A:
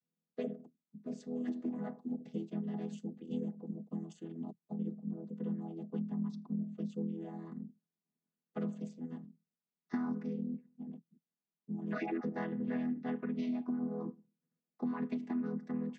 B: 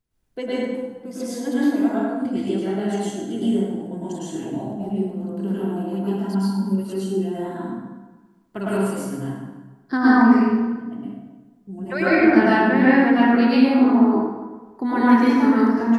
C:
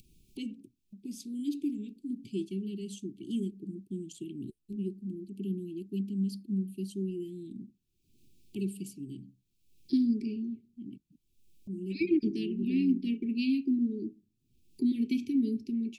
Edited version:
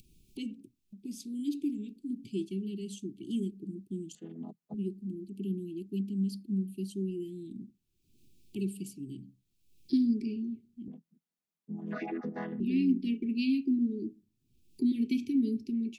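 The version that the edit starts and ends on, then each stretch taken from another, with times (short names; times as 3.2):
C
4.15–4.74 from A
10.88–12.6 from A
not used: B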